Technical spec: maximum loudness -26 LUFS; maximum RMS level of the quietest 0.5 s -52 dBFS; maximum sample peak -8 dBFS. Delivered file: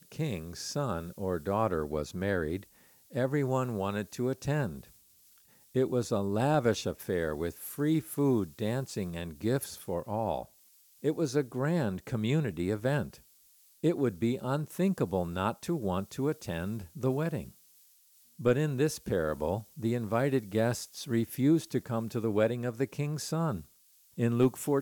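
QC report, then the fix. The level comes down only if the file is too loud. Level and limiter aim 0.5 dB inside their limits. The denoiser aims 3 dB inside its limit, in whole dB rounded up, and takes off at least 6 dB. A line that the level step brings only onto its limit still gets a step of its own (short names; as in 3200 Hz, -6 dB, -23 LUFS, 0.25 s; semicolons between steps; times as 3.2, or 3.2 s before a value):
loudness -31.5 LUFS: OK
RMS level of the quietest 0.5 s -63 dBFS: OK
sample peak -14.0 dBFS: OK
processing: none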